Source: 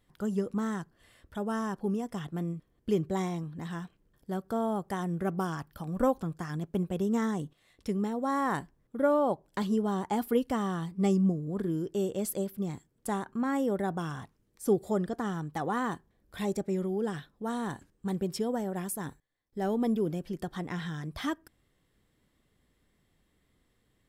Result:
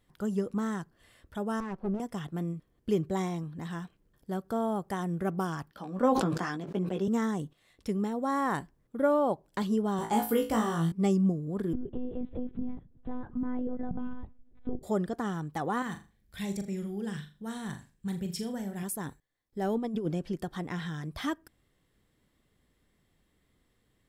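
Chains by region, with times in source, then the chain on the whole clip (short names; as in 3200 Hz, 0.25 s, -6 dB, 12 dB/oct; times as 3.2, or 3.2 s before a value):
1.6–2 minimum comb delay 5.3 ms + LPF 1100 Hz 6 dB/oct
5.71–7.08 three-band isolator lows -21 dB, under 180 Hz, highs -15 dB, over 6400 Hz + doubler 16 ms -6.5 dB + sustainer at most 28 dB/s
9.97–10.92 high shelf 6300 Hz +7 dB + flutter echo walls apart 3.1 m, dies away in 0.32 s
11.73–14.83 tilt -4.5 dB/oct + compressor 2.5:1, threshold -35 dBFS + monotone LPC vocoder at 8 kHz 250 Hz
15.82–18.83 band shelf 600 Hz -9.5 dB 2.6 oct + flutter echo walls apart 6.9 m, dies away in 0.31 s
19.75–20.36 LPF 8500 Hz + negative-ratio compressor -30 dBFS, ratio -0.5
whole clip: dry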